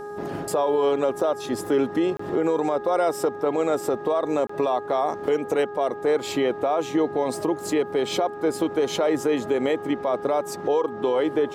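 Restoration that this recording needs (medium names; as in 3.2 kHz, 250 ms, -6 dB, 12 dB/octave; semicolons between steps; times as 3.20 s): de-hum 412.8 Hz, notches 4; interpolate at 2.17/4.47 s, 24 ms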